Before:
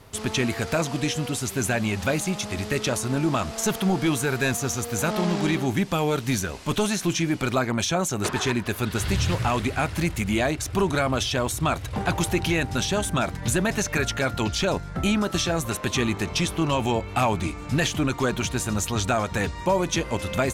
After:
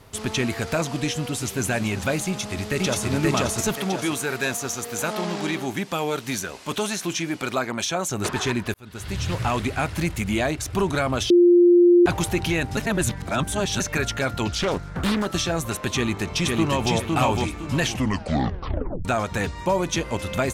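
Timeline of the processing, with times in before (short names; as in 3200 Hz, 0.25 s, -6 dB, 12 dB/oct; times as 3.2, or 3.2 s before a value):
1.01–1.66 echo throw 0.38 s, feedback 60%, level -13 dB
2.26–3.07 echo throw 0.53 s, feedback 45%, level 0 dB
3.74–8.09 HPF 310 Hz 6 dB/oct
8.74–9.47 fade in
11.3–12.06 bleep 350 Hz -10.5 dBFS
12.77–13.8 reverse
14.51–15.26 Doppler distortion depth 0.66 ms
15.94–16.93 echo throw 0.51 s, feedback 30%, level -2 dB
17.83 tape stop 1.22 s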